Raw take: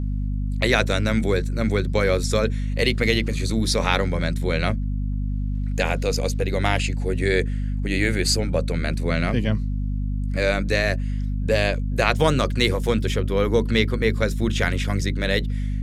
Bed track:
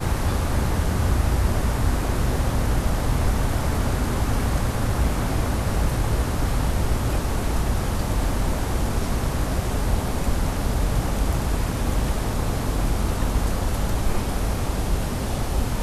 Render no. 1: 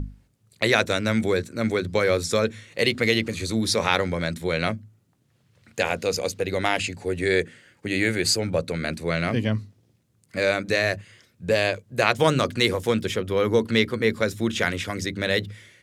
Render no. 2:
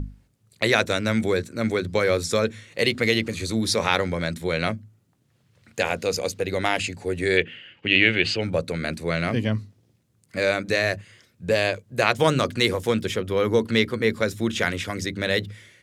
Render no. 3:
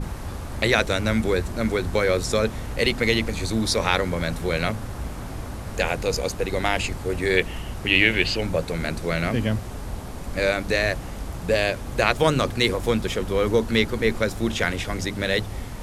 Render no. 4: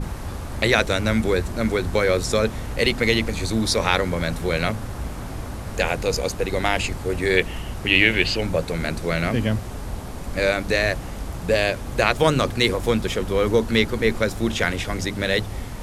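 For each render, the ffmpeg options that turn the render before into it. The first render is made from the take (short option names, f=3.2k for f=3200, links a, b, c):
-af "bandreject=f=50:t=h:w=6,bandreject=f=100:t=h:w=6,bandreject=f=150:t=h:w=6,bandreject=f=200:t=h:w=6,bandreject=f=250:t=h:w=6"
-filter_complex "[0:a]asettb=1/sr,asplit=3[a][b][c];[a]atrim=end=7.374[d];[b]atrim=start=7.37:end=8.41,asetpts=PTS-STARTPTS,afade=t=in:d=0.004:c=qsin,afade=t=out:st=1.036:d=0.004:c=qsin,lowpass=f=2.9k:t=q:w=9.4[e];[c]atrim=start=8.406[f];[d][e]acrossfade=d=0.004:c1=hsin:c2=qsin[g];[g][f]acrossfade=d=0.004:c1=qsin:c2=hsin"
-filter_complex "[1:a]volume=-10dB[a];[0:a][a]amix=inputs=2:normalize=0"
-af "volume=1.5dB,alimiter=limit=-1dB:level=0:latency=1"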